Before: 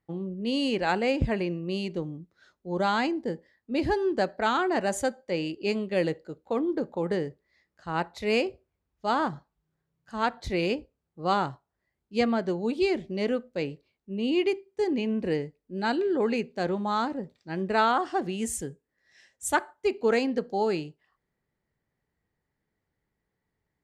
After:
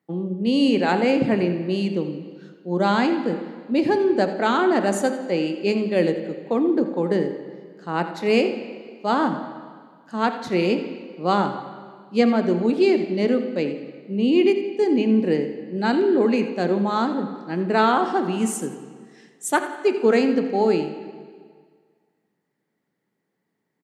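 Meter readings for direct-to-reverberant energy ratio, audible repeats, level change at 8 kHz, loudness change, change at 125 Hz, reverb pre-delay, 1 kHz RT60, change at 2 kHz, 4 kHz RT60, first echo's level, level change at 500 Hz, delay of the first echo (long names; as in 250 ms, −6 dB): 7.0 dB, 1, +3.5 dB, +7.0 dB, +6.0 dB, 8 ms, 1.8 s, +4.0 dB, 1.7 s, −13.5 dB, +7.0 dB, 85 ms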